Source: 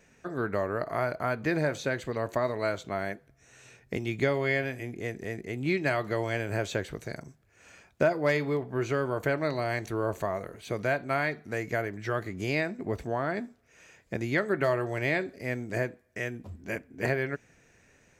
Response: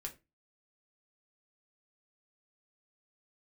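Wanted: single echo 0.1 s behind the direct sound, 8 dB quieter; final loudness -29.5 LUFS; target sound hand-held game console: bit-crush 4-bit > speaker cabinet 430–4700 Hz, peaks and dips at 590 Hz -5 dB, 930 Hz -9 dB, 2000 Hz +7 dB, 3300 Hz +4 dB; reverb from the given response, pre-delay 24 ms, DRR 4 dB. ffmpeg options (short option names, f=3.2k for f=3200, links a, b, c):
-filter_complex "[0:a]aecho=1:1:100:0.398,asplit=2[a][b];[1:a]atrim=start_sample=2205,adelay=24[c];[b][c]afir=irnorm=-1:irlink=0,volume=-1.5dB[d];[a][d]amix=inputs=2:normalize=0,acrusher=bits=3:mix=0:aa=0.000001,highpass=430,equalizer=f=590:t=q:w=4:g=-5,equalizer=f=930:t=q:w=4:g=-9,equalizer=f=2k:t=q:w=4:g=7,equalizer=f=3.3k:t=q:w=4:g=4,lowpass=f=4.7k:w=0.5412,lowpass=f=4.7k:w=1.3066,volume=-2dB"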